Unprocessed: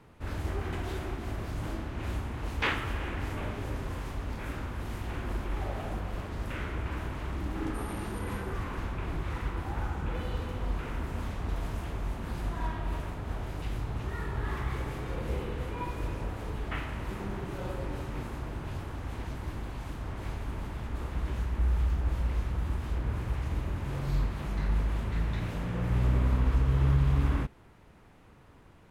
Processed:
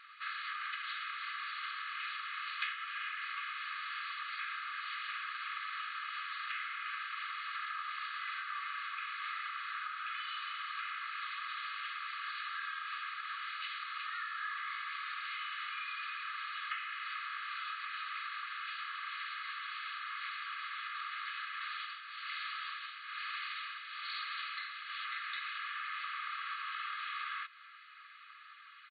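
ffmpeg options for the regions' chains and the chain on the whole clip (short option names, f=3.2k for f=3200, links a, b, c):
-filter_complex "[0:a]asettb=1/sr,asplit=3[a][b][c];[a]atrim=end=21.614[d];[b]atrim=start=21.61:end=25.05,asetpts=PTS-STARTPTS,afade=t=in:d=0.004:c=qsin,afade=t=out:st=3.436:d=0.004:c=qsin,aemphasis=mode=production:type=75kf,tremolo=f=1.1:d=0.72[e];[c]atrim=start=25.046[f];[d][e]acrossfade=d=0.004:c1=hsin:c2=qsin[g];[g][f]acrossfade=d=0.004:c1=qsin:c2=hsin,afftfilt=real='re*between(b*sr/4096,1100,4600)':imag='im*between(b*sr/4096,1100,4600)':win_size=4096:overlap=0.75,aecho=1:1:2.4:0.62,acompressor=threshold=-47dB:ratio=6,volume=9.5dB"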